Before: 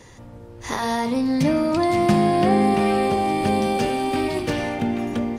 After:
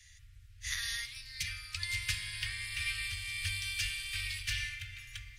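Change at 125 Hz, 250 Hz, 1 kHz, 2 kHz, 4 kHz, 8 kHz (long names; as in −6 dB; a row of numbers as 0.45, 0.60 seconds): −16.5 dB, below −40 dB, −37.5 dB, −5.0 dB, −2.5 dB, −2.5 dB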